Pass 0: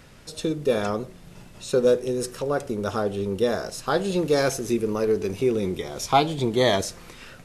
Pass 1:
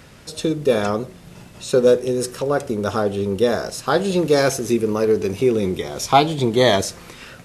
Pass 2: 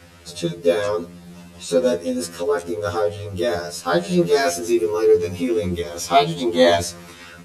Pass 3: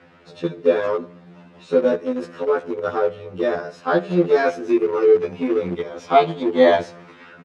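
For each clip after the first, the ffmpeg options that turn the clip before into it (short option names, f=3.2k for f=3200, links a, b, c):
-af "highpass=43,volume=5dB"
-af "afftfilt=real='re*2*eq(mod(b,4),0)':imag='im*2*eq(mod(b,4),0)':win_size=2048:overlap=0.75,volume=1.5dB"
-filter_complex "[0:a]aecho=1:1:70|140|210|280:0.0794|0.0445|0.0249|0.0139,asplit=2[a][b];[b]aeval=exprs='val(0)*gte(abs(val(0)),0.112)':c=same,volume=-10dB[c];[a][c]amix=inputs=2:normalize=0,highpass=180,lowpass=2.2k,volume=-1dB"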